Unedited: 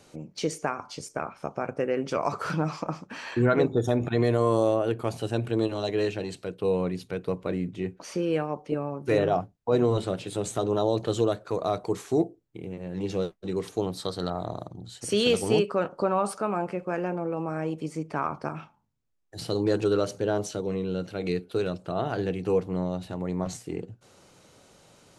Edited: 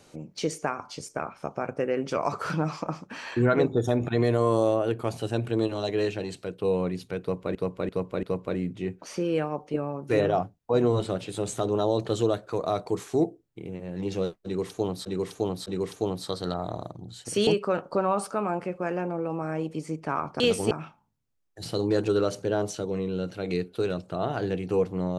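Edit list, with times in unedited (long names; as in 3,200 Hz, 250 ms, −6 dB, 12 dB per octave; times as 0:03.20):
0:07.21–0:07.55: repeat, 4 plays
0:13.42–0:14.03: repeat, 3 plays
0:15.23–0:15.54: move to 0:18.47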